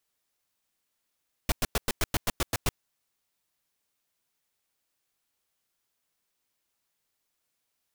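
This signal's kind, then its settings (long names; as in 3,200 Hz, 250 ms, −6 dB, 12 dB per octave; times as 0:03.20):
noise bursts pink, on 0.03 s, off 0.10 s, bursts 10, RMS −25 dBFS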